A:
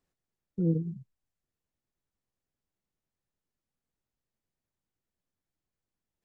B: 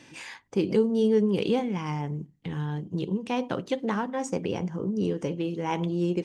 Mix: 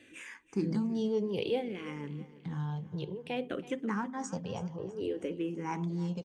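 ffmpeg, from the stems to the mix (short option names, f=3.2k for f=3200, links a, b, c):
-filter_complex "[0:a]volume=-10dB[a];[1:a]asplit=2[b][c];[c]afreqshift=-0.58[d];[b][d]amix=inputs=2:normalize=1,volume=-4dB,asplit=2[e][f];[f]volume=-17.5dB,aecho=0:1:326|652|978|1304|1630|1956|2282:1|0.48|0.23|0.111|0.0531|0.0255|0.0122[g];[a][e][g]amix=inputs=3:normalize=0"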